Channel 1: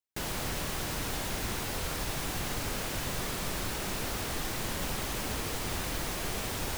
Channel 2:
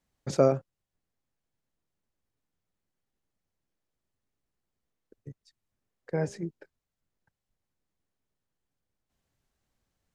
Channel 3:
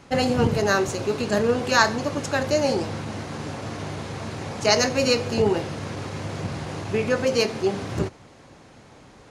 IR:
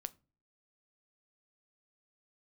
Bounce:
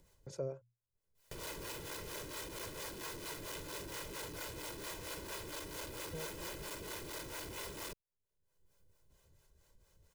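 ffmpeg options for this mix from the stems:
-filter_complex "[0:a]asoftclip=type=hard:threshold=-36.5dB,aeval=exprs='val(0)*sin(2*PI*300*n/s)':channel_layout=same,adelay=1150,volume=-1.5dB[link_01];[1:a]equalizer=frequency=2000:width=0.36:gain=-6,bandreject=frequency=60:width_type=h:width=6,bandreject=frequency=120:width_type=h:width=6,volume=-14.5dB[link_02];[link_01][link_02]amix=inputs=2:normalize=0,aecho=1:1:2:0.7,acompressor=mode=upward:threshold=-41dB:ratio=2.5,acrossover=split=410[link_03][link_04];[link_03]aeval=exprs='val(0)*(1-0.7/2+0.7/2*cos(2*PI*4.4*n/s))':channel_layout=same[link_05];[link_04]aeval=exprs='val(0)*(1-0.7/2-0.7/2*cos(2*PI*4.4*n/s))':channel_layout=same[link_06];[link_05][link_06]amix=inputs=2:normalize=0"

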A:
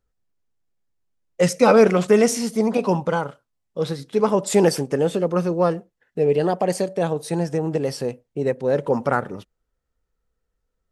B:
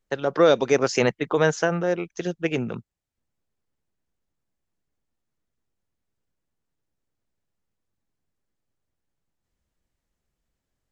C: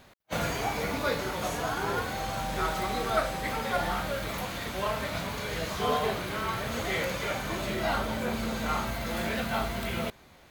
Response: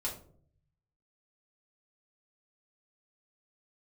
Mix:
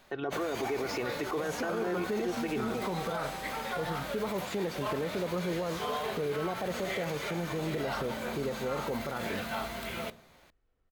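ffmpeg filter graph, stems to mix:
-filter_complex "[0:a]acompressor=threshold=-29dB:ratio=2.5,volume=-1dB[link_01];[1:a]aecho=1:1:2.7:0.65,volume=-1dB[link_02];[2:a]lowshelf=frequency=180:gain=-9.5,volume=-4.5dB,asplit=2[link_03][link_04];[link_04]volume=-14.5dB[link_05];[link_01][link_02]amix=inputs=2:normalize=0,lowpass=2900,alimiter=limit=-17dB:level=0:latency=1:release=64,volume=0dB[link_06];[3:a]atrim=start_sample=2205[link_07];[link_05][link_07]afir=irnorm=-1:irlink=0[link_08];[link_03][link_06][link_08]amix=inputs=3:normalize=0,alimiter=level_in=0.5dB:limit=-24dB:level=0:latency=1:release=36,volume=-0.5dB"

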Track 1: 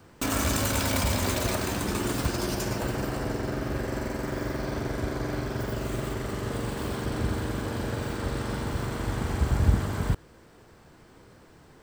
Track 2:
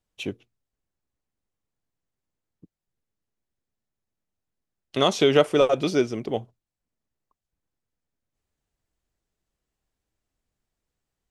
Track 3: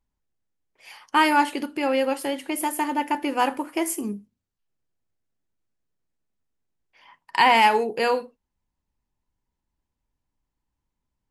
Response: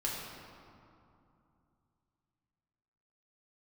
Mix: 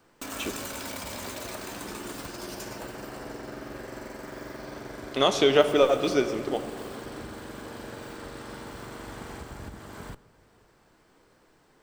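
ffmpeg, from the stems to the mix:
-filter_complex "[0:a]alimiter=limit=-17dB:level=0:latency=1:release=354,volume=-6.5dB,asplit=2[link_01][link_02];[link_02]volume=-20.5dB[link_03];[1:a]adelay=200,volume=-3dB,asplit=2[link_04][link_05];[link_05]volume=-9dB[link_06];[3:a]atrim=start_sample=2205[link_07];[link_03][link_06]amix=inputs=2:normalize=0[link_08];[link_08][link_07]afir=irnorm=-1:irlink=0[link_09];[link_01][link_04][link_09]amix=inputs=3:normalize=0,equalizer=frequency=79:width=0.55:gain=-12.5"

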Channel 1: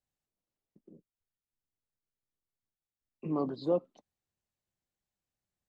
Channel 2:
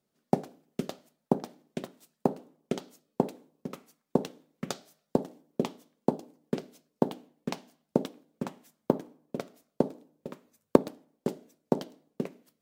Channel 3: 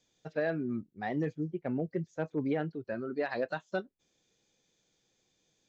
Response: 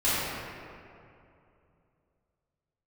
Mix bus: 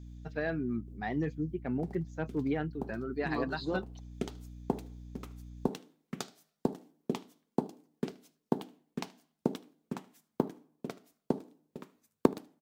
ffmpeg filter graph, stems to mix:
-filter_complex "[0:a]highshelf=frequency=2000:gain=10.5,acontrast=88,acrossover=split=520[link_01][link_02];[link_01]aeval=exprs='val(0)*(1-0.5/2+0.5/2*cos(2*PI*4.9*n/s))':channel_layout=same[link_03];[link_02]aeval=exprs='val(0)*(1-0.5/2-0.5/2*cos(2*PI*4.9*n/s))':channel_layout=same[link_04];[link_03][link_04]amix=inputs=2:normalize=0,volume=-8dB,asplit=2[link_05][link_06];[link_06]volume=-20dB[link_07];[1:a]adelay=1500,volume=-3.5dB,asplit=2[link_08][link_09];[link_09]volume=-22.5dB[link_10];[2:a]aeval=exprs='val(0)+0.00501*(sin(2*PI*60*n/s)+sin(2*PI*2*60*n/s)/2+sin(2*PI*3*60*n/s)/3+sin(2*PI*4*60*n/s)/4+sin(2*PI*5*60*n/s)/5)':channel_layout=same,volume=0.5dB,asplit=2[link_11][link_12];[link_12]apad=whole_len=622307[link_13];[link_08][link_13]sidechaincompress=threshold=-42dB:ratio=12:attack=12:release=314[link_14];[link_07][link_10]amix=inputs=2:normalize=0,aecho=0:1:76:1[link_15];[link_05][link_14][link_11][link_15]amix=inputs=4:normalize=0,equalizer=frequency=560:width_type=o:width=0.37:gain=-8.5"

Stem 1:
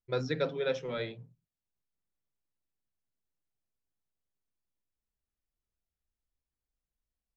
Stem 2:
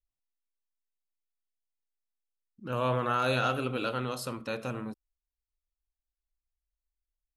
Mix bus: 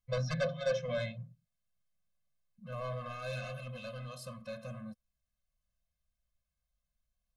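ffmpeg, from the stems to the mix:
ffmpeg -i stem1.wav -i stem2.wav -filter_complex "[0:a]aeval=exprs='0.126*sin(PI/2*2.51*val(0)/0.126)':channel_layout=same,volume=-6.5dB[link_01];[1:a]adynamicequalizer=threshold=0.00631:dfrequency=860:dqfactor=1.3:tfrequency=860:tqfactor=1.3:attack=5:release=100:ratio=0.375:range=3.5:mode=cutabove:tftype=bell,asoftclip=type=tanh:threshold=-27.5dB,volume=-4dB[link_02];[link_01][link_02]amix=inputs=2:normalize=0,highshelf=frequency=9200:gain=-4,afftfilt=real='re*eq(mod(floor(b*sr/1024/250),2),0)':imag='im*eq(mod(floor(b*sr/1024/250),2),0)':win_size=1024:overlap=0.75" out.wav

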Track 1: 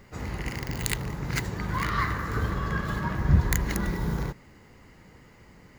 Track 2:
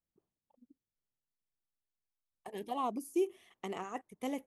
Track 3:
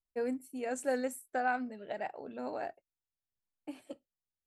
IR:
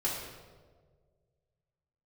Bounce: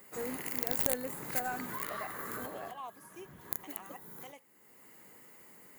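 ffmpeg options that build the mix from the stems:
-filter_complex "[0:a]highpass=270,acompressor=threshold=-35dB:ratio=5,aexciter=amount=7.8:drive=5.6:freq=7800,volume=-3dB[link_01];[1:a]highpass=740,volume=-5dB,asplit=2[link_02][link_03];[2:a]volume=-4.5dB[link_04];[link_03]apad=whole_len=254999[link_05];[link_01][link_05]sidechaincompress=threshold=-56dB:ratio=12:attack=16:release=623[link_06];[link_06][link_02][link_04]amix=inputs=3:normalize=0,aeval=exprs='(tanh(3.98*val(0)+0.45)-tanh(0.45))/3.98':channel_layout=same"

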